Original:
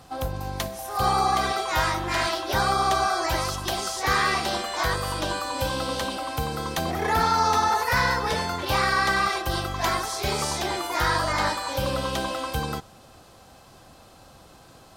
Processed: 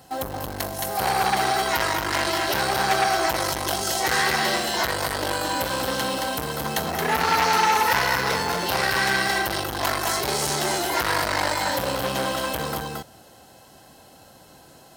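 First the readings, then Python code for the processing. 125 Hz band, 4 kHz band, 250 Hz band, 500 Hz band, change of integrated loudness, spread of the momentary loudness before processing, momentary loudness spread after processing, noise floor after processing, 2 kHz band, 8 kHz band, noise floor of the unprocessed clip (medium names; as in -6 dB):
-2.5 dB, +3.0 dB, +1.5 dB, +2.5 dB, +2.0 dB, 8 LU, 7 LU, -50 dBFS, +3.0 dB, +5.0 dB, -51 dBFS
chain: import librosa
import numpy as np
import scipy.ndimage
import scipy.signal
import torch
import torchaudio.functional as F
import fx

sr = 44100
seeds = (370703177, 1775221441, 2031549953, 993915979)

p1 = fx.high_shelf(x, sr, hz=11000.0, db=11.5)
p2 = fx.quant_dither(p1, sr, seeds[0], bits=6, dither='none')
p3 = p1 + F.gain(torch.from_numpy(p2), -3.5).numpy()
p4 = fx.notch_comb(p3, sr, f0_hz=1200.0)
p5 = p4 + 10.0 ** (-4.0 / 20.0) * np.pad(p4, (int(223 * sr / 1000.0), 0))[:len(p4)]
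y = fx.transformer_sat(p5, sr, knee_hz=2300.0)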